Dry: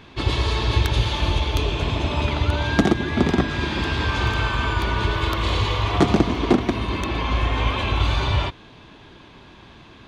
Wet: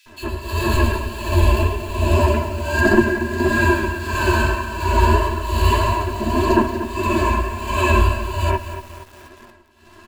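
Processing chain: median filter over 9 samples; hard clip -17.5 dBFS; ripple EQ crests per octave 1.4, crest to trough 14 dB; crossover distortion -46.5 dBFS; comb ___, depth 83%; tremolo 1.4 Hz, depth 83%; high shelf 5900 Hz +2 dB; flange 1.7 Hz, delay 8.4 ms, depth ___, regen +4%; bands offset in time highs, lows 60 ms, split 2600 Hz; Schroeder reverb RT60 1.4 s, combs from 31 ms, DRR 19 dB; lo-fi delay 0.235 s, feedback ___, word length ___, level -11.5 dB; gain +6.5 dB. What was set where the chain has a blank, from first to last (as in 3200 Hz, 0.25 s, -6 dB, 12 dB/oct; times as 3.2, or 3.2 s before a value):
3 ms, 5.6 ms, 55%, 7-bit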